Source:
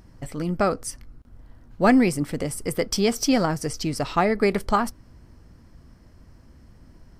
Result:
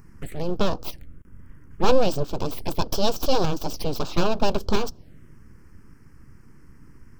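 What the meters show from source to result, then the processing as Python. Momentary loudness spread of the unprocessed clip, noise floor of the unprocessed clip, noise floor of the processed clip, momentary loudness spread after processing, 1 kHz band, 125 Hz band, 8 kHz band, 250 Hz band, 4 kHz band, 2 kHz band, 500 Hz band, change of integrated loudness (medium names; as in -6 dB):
12 LU, -52 dBFS, -49 dBFS, 10 LU, -2.5 dB, -1.0 dB, -6.5 dB, -6.5 dB, +1.5 dB, -7.0 dB, -0.5 dB, -3.0 dB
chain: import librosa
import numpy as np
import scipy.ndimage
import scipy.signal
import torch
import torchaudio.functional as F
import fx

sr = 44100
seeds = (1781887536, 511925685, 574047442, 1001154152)

y = np.abs(x)
y = fx.env_phaser(y, sr, low_hz=590.0, high_hz=2000.0, full_db=-23.5)
y = F.gain(torch.from_numpy(y), 4.0).numpy()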